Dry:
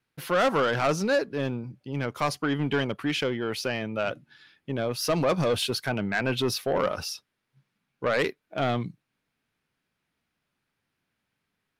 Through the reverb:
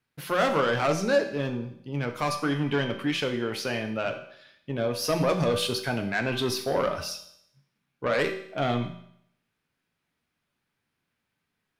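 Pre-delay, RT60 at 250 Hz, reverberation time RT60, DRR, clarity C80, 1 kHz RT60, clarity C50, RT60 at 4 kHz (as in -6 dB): 5 ms, 0.70 s, 0.70 s, 4.5 dB, 12.5 dB, 0.70 s, 9.0 dB, 0.70 s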